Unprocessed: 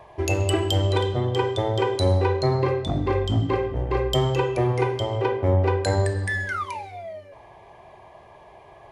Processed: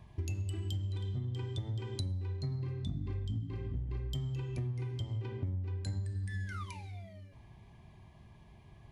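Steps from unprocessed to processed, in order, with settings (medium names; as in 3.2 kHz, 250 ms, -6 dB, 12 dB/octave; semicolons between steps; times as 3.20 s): FFT filter 220 Hz 0 dB, 530 Hz -26 dB, 3.8 kHz -10 dB; compression 12:1, threshold -36 dBFS, peak gain reduction 19 dB; trim +2.5 dB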